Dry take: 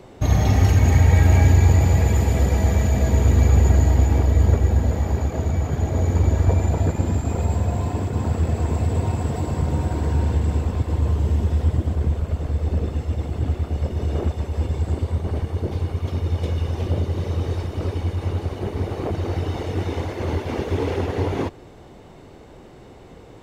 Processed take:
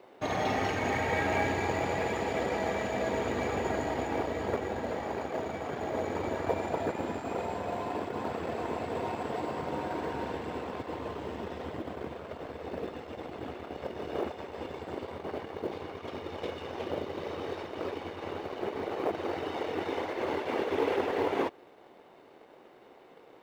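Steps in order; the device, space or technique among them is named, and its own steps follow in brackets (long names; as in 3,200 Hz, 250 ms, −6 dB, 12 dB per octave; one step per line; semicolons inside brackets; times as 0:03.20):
phone line with mismatched companding (band-pass filter 390–3,400 Hz; mu-law and A-law mismatch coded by A)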